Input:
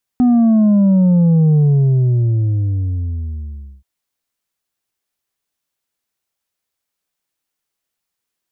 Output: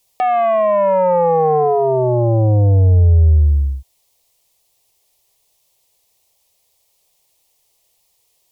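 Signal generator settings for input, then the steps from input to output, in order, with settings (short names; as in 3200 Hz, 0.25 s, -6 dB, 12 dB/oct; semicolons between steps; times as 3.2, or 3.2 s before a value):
sub drop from 250 Hz, over 3.63 s, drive 4 dB, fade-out 2.27 s, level -9 dB
in parallel at +0.5 dB: limiter -21 dBFS; on the sum: sine folder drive 8 dB, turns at -6.5 dBFS; fixed phaser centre 610 Hz, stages 4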